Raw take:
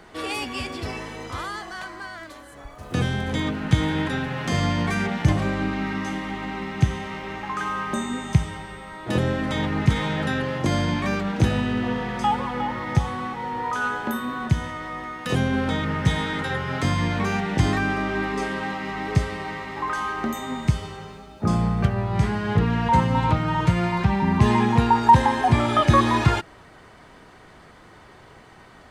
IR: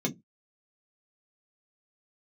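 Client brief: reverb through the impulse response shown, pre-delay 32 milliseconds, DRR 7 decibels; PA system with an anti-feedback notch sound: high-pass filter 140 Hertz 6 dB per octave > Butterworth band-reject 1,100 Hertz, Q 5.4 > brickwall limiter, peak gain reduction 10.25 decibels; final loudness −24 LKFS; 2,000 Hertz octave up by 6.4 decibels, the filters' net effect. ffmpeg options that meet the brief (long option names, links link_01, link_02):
-filter_complex "[0:a]equalizer=frequency=2000:width_type=o:gain=8,asplit=2[link_01][link_02];[1:a]atrim=start_sample=2205,adelay=32[link_03];[link_02][link_03]afir=irnorm=-1:irlink=0,volume=-13dB[link_04];[link_01][link_04]amix=inputs=2:normalize=0,highpass=frequency=140:poles=1,asuperstop=centerf=1100:order=8:qfactor=5.4,volume=-2dB,alimiter=limit=-13.5dB:level=0:latency=1"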